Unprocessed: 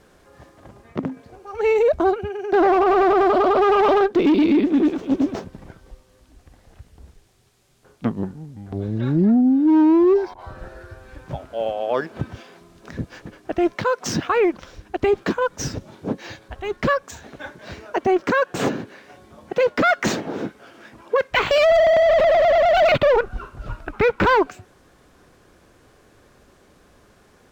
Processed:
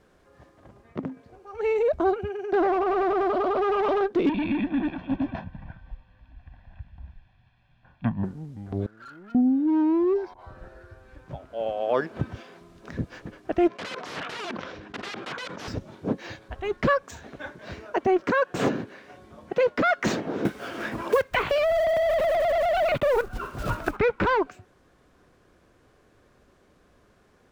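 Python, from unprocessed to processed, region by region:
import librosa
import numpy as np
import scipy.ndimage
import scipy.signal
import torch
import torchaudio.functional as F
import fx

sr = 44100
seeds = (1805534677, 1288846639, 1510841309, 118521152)

y = fx.chain(x, sr, fx.lowpass(hz=3200.0, slope=24),
    fx.peak_eq(hz=410.0, db=-9.5, octaves=1.4),
    fx.comb(ms=1.2, depth=0.78), at=(4.29, 8.24))
y = fx.chain(y, sr, fx.bandpass_q(hz=1400.0, q=16.0),
    fx.leveller(passes=3), at=(8.86, 9.35))
y = fx.chain(y, sr, fx.overflow_wrap(gain_db=24.0),
    fx.bandpass_edges(low_hz=160.0, high_hz=3700.0),
    fx.sustainer(db_per_s=35.0), at=(13.68, 15.68))
y = fx.chain(y, sr, fx.block_float(bits=5),
    fx.band_squash(depth_pct=70), at=(20.45, 23.97))
y = fx.high_shelf(y, sr, hz=4300.0, db=-6.5)
y = fx.notch(y, sr, hz=840.0, q=23.0)
y = fx.rider(y, sr, range_db=3, speed_s=0.5)
y = y * librosa.db_to_amplitude(-4.5)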